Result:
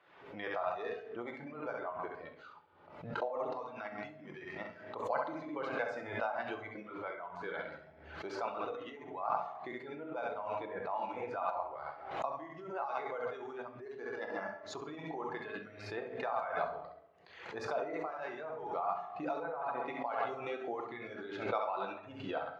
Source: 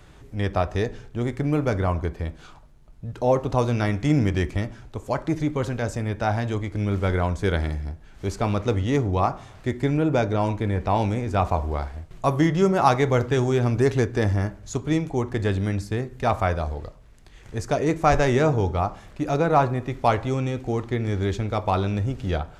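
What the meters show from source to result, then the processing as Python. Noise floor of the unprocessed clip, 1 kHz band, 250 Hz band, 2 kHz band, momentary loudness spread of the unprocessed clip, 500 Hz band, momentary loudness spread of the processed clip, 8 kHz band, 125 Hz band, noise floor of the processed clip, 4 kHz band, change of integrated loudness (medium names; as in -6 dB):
-48 dBFS, -11.5 dB, -21.5 dB, -10.5 dB, 11 LU, -14.0 dB, 9 LU, under -20 dB, -32.5 dB, -56 dBFS, -15.5 dB, -16.0 dB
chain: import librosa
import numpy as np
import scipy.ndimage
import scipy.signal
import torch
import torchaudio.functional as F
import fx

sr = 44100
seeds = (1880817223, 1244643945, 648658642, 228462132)

y = fx.high_shelf(x, sr, hz=5500.0, db=-5.5)
y = fx.room_flutter(y, sr, wall_m=11.5, rt60_s=0.81)
y = fx.over_compress(y, sr, threshold_db=-25.0, ratio=-1.0)
y = fx.dereverb_blind(y, sr, rt60_s=0.94)
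y = fx.air_absorb(y, sr, metres=320.0)
y = fx.room_shoebox(y, sr, seeds[0], volume_m3=600.0, walls='mixed', distance_m=0.75)
y = fx.noise_reduce_blind(y, sr, reduce_db=8)
y = scipy.signal.sosfilt(scipy.signal.butter(2, 630.0, 'highpass', fs=sr, output='sos'), y)
y = fx.pre_swell(y, sr, db_per_s=68.0)
y = y * 10.0 ** (-4.5 / 20.0)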